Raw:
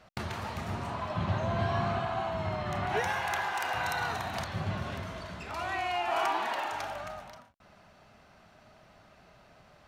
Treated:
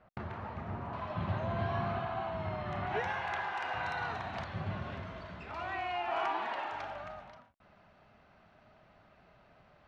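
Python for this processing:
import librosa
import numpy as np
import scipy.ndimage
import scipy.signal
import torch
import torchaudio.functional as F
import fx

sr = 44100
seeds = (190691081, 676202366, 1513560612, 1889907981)

y = fx.lowpass(x, sr, hz=fx.steps((0.0, 1700.0), (0.93, 3200.0)), slope=12)
y = F.gain(torch.from_numpy(y), -4.0).numpy()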